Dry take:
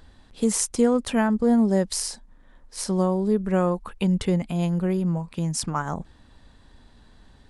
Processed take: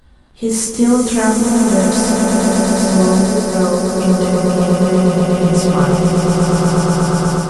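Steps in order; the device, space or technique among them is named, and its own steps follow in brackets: echo with a slow build-up 121 ms, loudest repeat 8, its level -6.5 dB; speakerphone in a meeting room (reverberation RT60 0.45 s, pre-delay 18 ms, DRR -3 dB; level rider; trim -1 dB; Opus 32 kbps 48 kHz)

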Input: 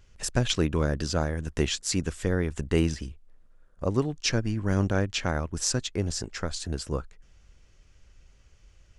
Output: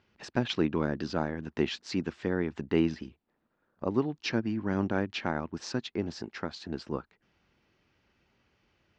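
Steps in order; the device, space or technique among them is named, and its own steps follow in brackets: kitchen radio (cabinet simulation 160–4300 Hz, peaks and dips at 230 Hz +5 dB, 340 Hz +4 dB, 520 Hz -3 dB, 870 Hz +5 dB, 3.3 kHz -3 dB); trim -3 dB

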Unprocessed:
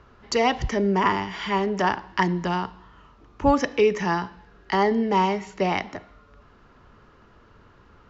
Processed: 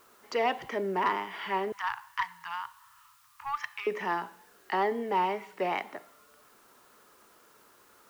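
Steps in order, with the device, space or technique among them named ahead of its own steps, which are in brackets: tape answering machine (band-pass 370–3000 Hz; saturation -12 dBFS, distortion -22 dB; wow and flutter; white noise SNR 31 dB); 1.72–3.87 s: elliptic band-stop 120–1000 Hz, stop band 40 dB; trim -4.5 dB

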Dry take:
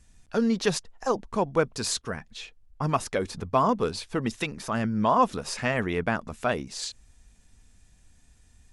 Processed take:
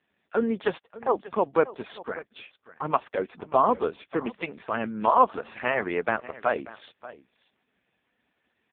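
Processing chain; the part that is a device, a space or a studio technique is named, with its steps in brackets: 4.85–5.60 s: high-pass 75 Hz -> 160 Hz 6 dB/octave; satellite phone (band-pass 330–3200 Hz; delay 588 ms -18 dB; trim +3.5 dB; AMR-NB 4.75 kbps 8 kHz)

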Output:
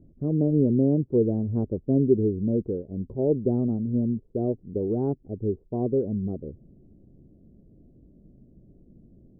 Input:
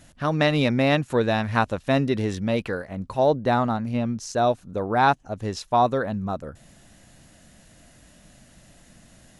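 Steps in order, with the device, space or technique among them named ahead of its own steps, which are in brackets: under water (low-pass 400 Hz 24 dB/octave; peaking EQ 400 Hz +9 dB 0.58 oct)

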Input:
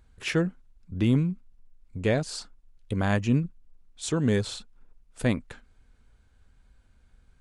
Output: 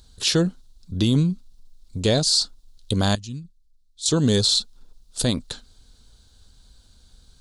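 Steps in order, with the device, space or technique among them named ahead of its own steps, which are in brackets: 3.15–4.06 s: amplifier tone stack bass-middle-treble 6-0-2; over-bright horn tweeter (resonant high shelf 3 kHz +10.5 dB, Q 3; peak limiter -16 dBFS, peak gain reduction 8.5 dB); trim +6 dB

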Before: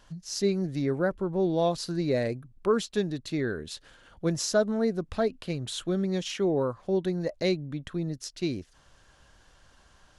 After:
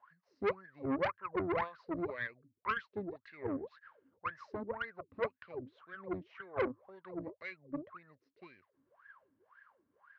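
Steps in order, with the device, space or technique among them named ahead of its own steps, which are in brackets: wah-wah guitar rig (wah-wah 1.9 Hz 270–1700 Hz, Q 21; valve stage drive 43 dB, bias 0.8; cabinet simulation 83–4400 Hz, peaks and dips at 100 Hz +8 dB, 310 Hz -7 dB, 740 Hz -7 dB, 1.1 kHz +5 dB, 2.1 kHz +7 dB, 3.4 kHz -5 dB); trim +16 dB

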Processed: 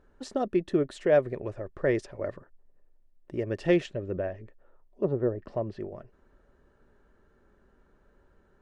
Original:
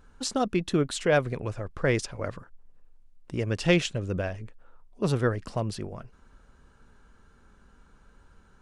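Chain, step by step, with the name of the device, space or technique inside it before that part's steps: 3.85–5.81 s: low-pass that closes with the level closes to 770 Hz, closed at -21 dBFS; inside a helmet (treble shelf 3.9 kHz -10 dB; small resonant body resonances 380/580/1800 Hz, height 11 dB, ringing for 25 ms); trim -7.5 dB

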